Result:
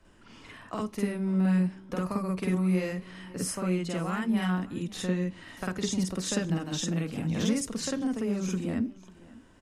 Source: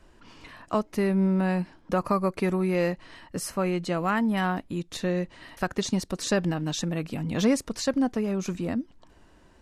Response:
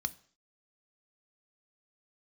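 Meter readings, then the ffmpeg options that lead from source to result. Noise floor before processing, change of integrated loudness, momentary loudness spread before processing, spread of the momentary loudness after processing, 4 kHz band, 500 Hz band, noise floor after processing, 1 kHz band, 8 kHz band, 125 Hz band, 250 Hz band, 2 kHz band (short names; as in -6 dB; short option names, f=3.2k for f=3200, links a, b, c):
-57 dBFS, -2.5 dB, 8 LU, 9 LU, -2.0 dB, -6.5 dB, -54 dBFS, -8.0 dB, +0.5 dB, -0.5 dB, -1.5 dB, -5.0 dB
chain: -filter_complex "[0:a]acrossover=split=160|3000[a][b][c];[b]acompressor=threshold=-28dB:ratio=6[d];[a][d][c]amix=inputs=3:normalize=0,aecho=1:1:548:0.0841,asplit=2[e][f];[1:a]atrim=start_sample=2205,asetrate=66150,aresample=44100,adelay=49[g];[f][g]afir=irnorm=-1:irlink=0,volume=5dB[h];[e][h]amix=inputs=2:normalize=0,volume=-5.5dB"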